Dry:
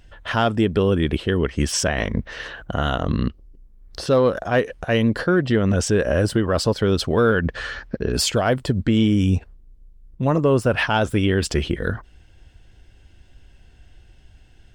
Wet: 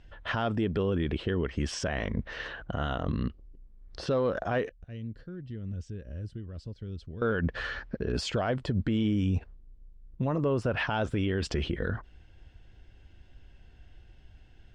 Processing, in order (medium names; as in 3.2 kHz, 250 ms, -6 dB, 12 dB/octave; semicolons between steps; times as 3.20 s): 4.69–7.22 s: amplifier tone stack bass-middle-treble 10-0-1; peak limiter -16 dBFS, peak gain reduction 7.5 dB; distance through air 110 m; trim -4 dB